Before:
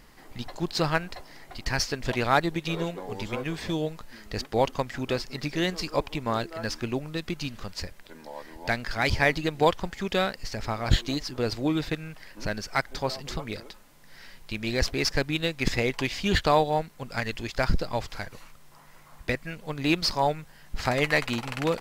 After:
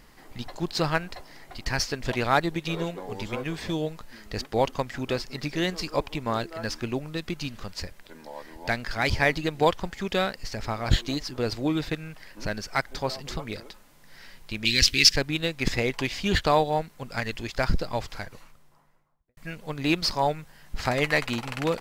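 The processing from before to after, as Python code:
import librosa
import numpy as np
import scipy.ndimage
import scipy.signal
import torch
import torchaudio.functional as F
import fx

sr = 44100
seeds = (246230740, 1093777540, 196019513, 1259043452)

y = fx.curve_eq(x, sr, hz=(270.0, 500.0, 710.0, 2900.0, 11000.0), db=(0, -11, -19, 14, 8), at=(14.65, 15.16))
y = fx.studio_fade_out(y, sr, start_s=18.07, length_s=1.3)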